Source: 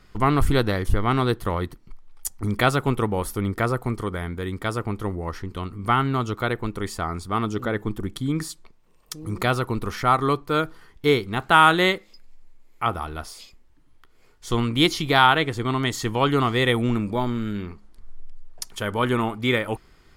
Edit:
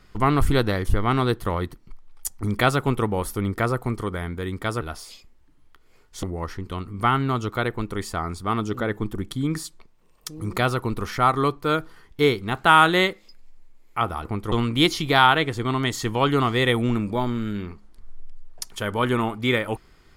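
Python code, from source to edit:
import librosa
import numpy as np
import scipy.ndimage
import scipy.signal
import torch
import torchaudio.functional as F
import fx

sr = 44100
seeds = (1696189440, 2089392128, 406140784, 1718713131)

y = fx.edit(x, sr, fx.swap(start_s=4.81, length_s=0.27, other_s=13.1, other_length_s=1.42), tone=tone)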